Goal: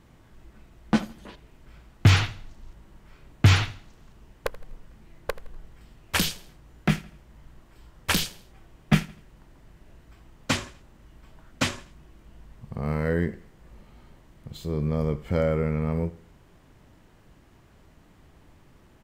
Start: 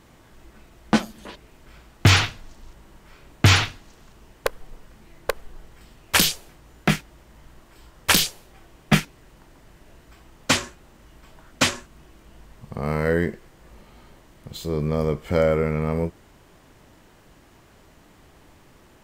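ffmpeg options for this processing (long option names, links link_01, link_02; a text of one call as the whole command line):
ffmpeg -i in.wav -filter_complex "[0:a]bass=frequency=250:gain=6,treble=frequency=4000:gain=-3,asplit=2[link_01][link_02];[link_02]aecho=0:1:82|164|246:0.106|0.0403|0.0153[link_03];[link_01][link_03]amix=inputs=2:normalize=0,volume=-6dB" out.wav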